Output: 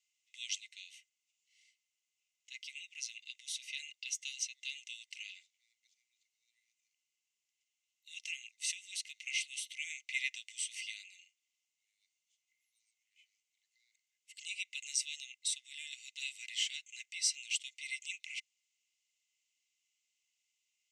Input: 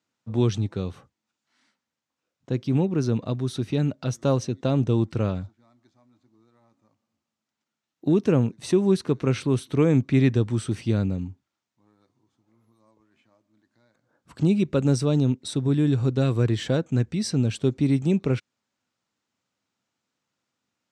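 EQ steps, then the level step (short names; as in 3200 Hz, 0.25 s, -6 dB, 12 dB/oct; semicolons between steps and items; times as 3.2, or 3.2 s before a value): rippled Chebyshev high-pass 2000 Hz, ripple 9 dB; high shelf 8400 Hz -4.5 dB; +6.5 dB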